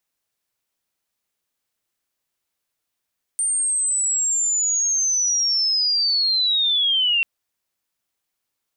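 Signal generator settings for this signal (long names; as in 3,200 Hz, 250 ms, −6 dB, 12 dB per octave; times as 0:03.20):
glide linear 8,900 Hz → 2,700 Hz −18.5 dBFS → −16 dBFS 3.84 s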